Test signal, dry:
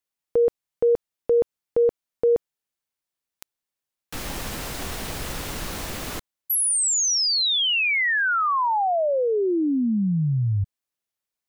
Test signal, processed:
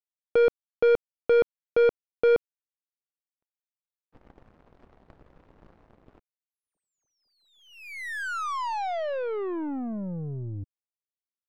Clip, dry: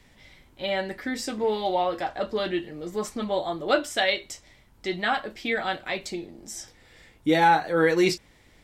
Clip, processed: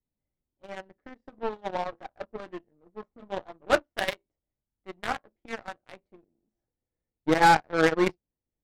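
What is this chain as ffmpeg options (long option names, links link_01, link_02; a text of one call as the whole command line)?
ffmpeg -i in.wav -af "adynamicsmooth=sensitivity=1:basefreq=610,lowshelf=frequency=250:gain=-3.5,aeval=exprs='0.398*(cos(1*acos(clip(val(0)/0.398,-1,1)))-cos(1*PI/2))+0.0224*(cos(5*acos(clip(val(0)/0.398,-1,1)))-cos(5*PI/2))+0.00251*(cos(6*acos(clip(val(0)/0.398,-1,1)))-cos(6*PI/2))+0.0708*(cos(7*acos(clip(val(0)/0.398,-1,1)))-cos(7*PI/2))+0.00708*(cos(8*acos(clip(val(0)/0.398,-1,1)))-cos(8*PI/2))':channel_layout=same,volume=1dB" out.wav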